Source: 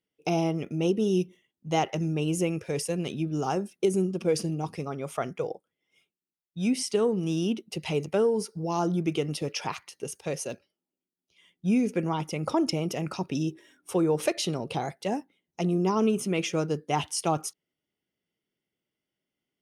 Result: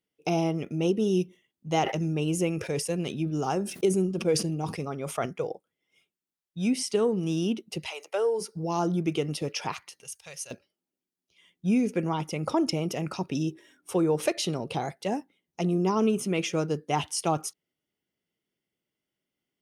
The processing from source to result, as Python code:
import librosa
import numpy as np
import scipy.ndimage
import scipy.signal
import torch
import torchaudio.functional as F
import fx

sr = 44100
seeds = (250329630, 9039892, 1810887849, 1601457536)

y = fx.sustainer(x, sr, db_per_s=94.0, at=(1.7, 5.26))
y = fx.highpass(y, sr, hz=fx.line((7.86, 830.0), (8.4, 320.0)), slope=24, at=(7.86, 8.4), fade=0.02)
y = fx.tone_stack(y, sr, knobs='10-0-10', at=(10.01, 10.51))